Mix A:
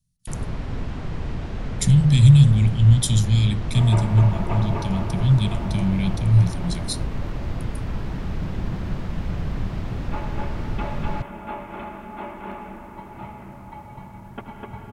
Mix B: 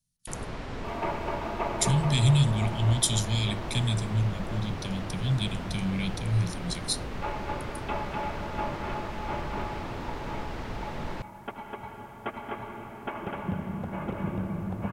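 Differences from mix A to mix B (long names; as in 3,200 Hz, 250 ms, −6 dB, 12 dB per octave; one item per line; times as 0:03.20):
second sound: entry −2.90 s
master: add bass and treble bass −11 dB, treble 0 dB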